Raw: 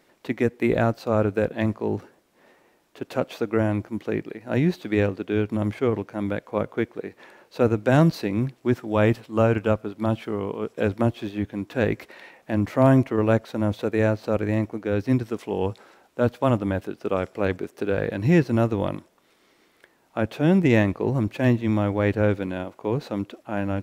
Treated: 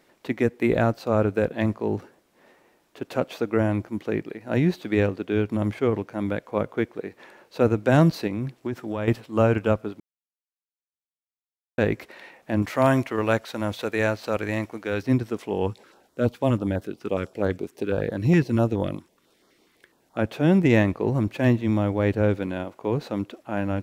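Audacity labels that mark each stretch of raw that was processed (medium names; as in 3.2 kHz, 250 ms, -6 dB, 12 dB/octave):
8.270000	9.080000	compression, threshold -24 dBFS
10.000000	11.780000	mute
12.620000	15.030000	tilt shelf lows -6 dB, about 770 Hz
15.670000	20.190000	step-sequenced notch 12 Hz 600–2500 Hz
21.640000	22.350000	peaking EQ 1.6 kHz -3 dB 1.8 oct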